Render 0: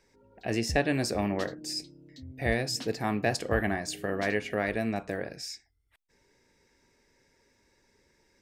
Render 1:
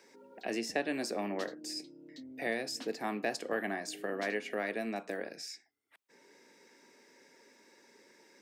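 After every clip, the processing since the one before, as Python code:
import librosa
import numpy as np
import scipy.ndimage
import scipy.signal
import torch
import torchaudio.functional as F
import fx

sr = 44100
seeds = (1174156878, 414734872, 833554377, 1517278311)

y = scipy.signal.sosfilt(scipy.signal.butter(4, 220.0, 'highpass', fs=sr, output='sos'), x)
y = fx.band_squash(y, sr, depth_pct=40)
y = y * librosa.db_to_amplitude(-5.0)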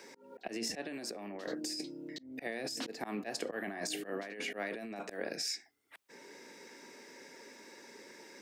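y = fx.auto_swell(x, sr, attack_ms=272.0)
y = fx.over_compress(y, sr, threshold_db=-44.0, ratio=-1.0)
y = y * librosa.db_to_amplitude(4.5)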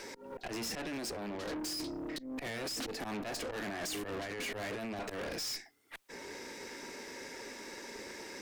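y = fx.tube_stage(x, sr, drive_db=47.0, bias=0.6)
y = y * librosa.db_to_amplitude(10.5)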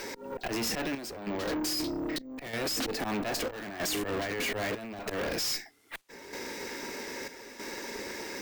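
y = fx.chopper(x, sr, hz=0.79, depth_pct=60, duty_pct=75)
y = np.repeat(y[::2], 2)[:len(y)]
y = y * librosa.db_to_amplitude(7.0)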